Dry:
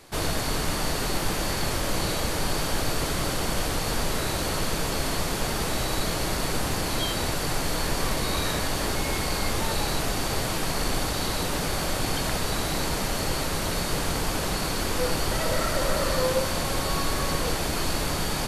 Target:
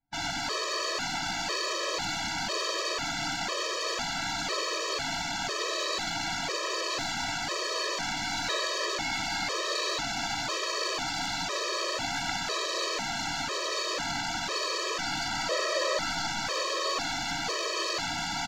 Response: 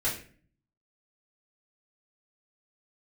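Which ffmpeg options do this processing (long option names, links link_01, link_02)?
-filter_complex "[0:a]anlmdn=39.8,highpass=frequency=780:poles=1,aresample=16000,aresample=44100,areverse,acompressor=mode=upward:threshold=-41dB:ratio=2.5,areverse,aecho=1:1:189|378|567|756:0.335|0.107|0.0343|0.011,asplit=2[link_01][link_02];[link_02]aeval=exprs='clip(val(0),-1,0.015)':channel_layout=same,volume=-3.5dB[link_03];[link_01][link_03]amix=inputs=2:normalize=0,afftfilt=real='re*gt(sin(2*PI*1*pts/sr)*(1-2*mod(floor(b*sr/1024/330),2)),0)':imag='im*gt(sin(2*PI*1*pts/sr)*(1-2*mod(floor(b*sr/1024/330),2)),0)':win_size=1024:overlap=0.75"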